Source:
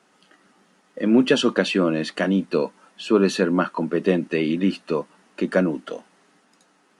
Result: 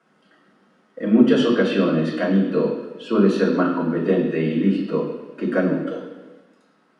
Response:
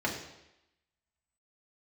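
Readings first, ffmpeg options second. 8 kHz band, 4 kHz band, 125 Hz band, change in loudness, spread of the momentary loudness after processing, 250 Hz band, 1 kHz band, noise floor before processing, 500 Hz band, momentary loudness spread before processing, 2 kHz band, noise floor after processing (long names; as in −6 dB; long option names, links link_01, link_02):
below −10 dB, −4.5 dB, +3.0 dB, +1.5 dB, 13 LU, +3.0 dB, 0.0 dB, −61 dBFS, +1.5 dB, 12 LU, −1.5 dB, −61 dBFS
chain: -filter_complex "[1:a]atrim=start_sample=2205,asetrate=32193,aresample=44100[link_01];[0:a][link_01]afir=irnorm=-1:irlink=0,volume=-11dB"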